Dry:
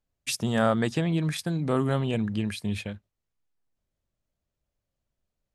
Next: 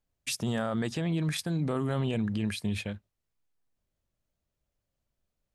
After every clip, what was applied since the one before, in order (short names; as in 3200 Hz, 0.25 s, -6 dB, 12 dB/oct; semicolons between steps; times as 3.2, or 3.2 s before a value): limiter -22 dBFS, peak gain reduction 10.5 dB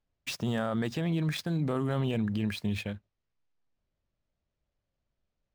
median filter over 5 samples